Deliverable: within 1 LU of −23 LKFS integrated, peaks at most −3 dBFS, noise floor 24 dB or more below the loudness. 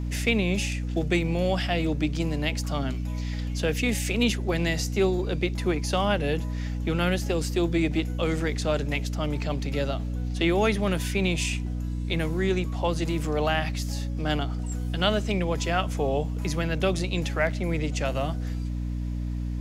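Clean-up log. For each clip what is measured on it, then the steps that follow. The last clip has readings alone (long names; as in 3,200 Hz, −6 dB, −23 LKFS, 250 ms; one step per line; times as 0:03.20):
mains hum 60 Hz; hum harmonics up to 300 Hz; level of the hum −27 dBFS; integrated loudness −27.0 LKFS; sample peak −10.5 dBFS; target loudness −23.0 LKFS
→ hum removal 60 Hz, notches 5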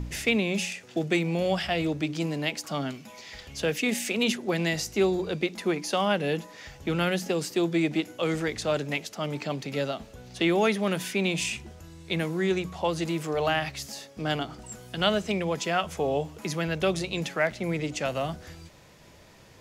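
mains hum none found; integrated loudness −28.0 LKFS; sample peak −10.5 dBFS; target loudness −23.0 LKFS
→ level +5 dB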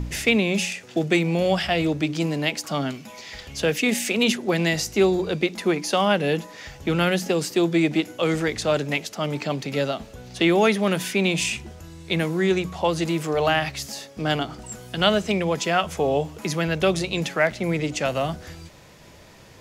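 integrated loudness −23.0 LKFS; sample peak −5.5 dBFS; background noise floor −47 dBFS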